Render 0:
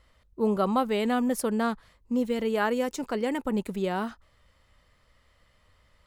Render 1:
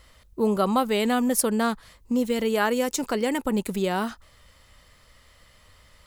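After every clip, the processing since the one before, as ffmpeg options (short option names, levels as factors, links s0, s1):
-filter_complex "[0:a]asplit=2[s0][s1];[s1]acompressor=threshold=0.0178:ratio=6,volume=1.26[s2];[s0][s2]amix=inputs=2:normalize=0,highshelf=f=4000:g=9.5"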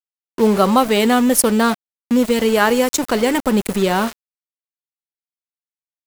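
-af "bandreject=f=139.4:t=h:w=4,bandreject=f=278.8:t=h:w=4,bandreject=f=418.2:t=h:w=4,bandreject=f=557.6:t=h:w=4,bandreject=f=697:t=h:w=4,bandreject=f=836.4:t=h:w=4,aeval=exprs='val(0)*gte(abs(val(0)),0.0266)':c=same,volume=2.66"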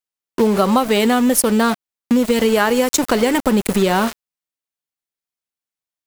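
-af "acompressor=threshold=0.158:ratio=6,volume=1.68"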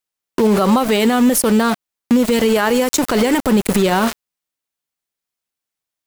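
-af "alimiter=level_in=3.35:limit=0.891:release=50:level=0:latency=1,volume=0.562"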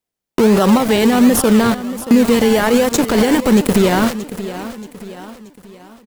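-filter_complex "[0:a]aecho=1:1:629|1258|1887|2516:0.211|0.0951|0.0428|0.0193,asplit=2[s0][s1];[s1]acrusher=samples=27:mix=1:aa=0.000001:lfo=1:lforange=16.2:lforate=1.3,volume=0.562[s2];[s0][s2]amix=inputs=2:normalize=0,volume=0.891"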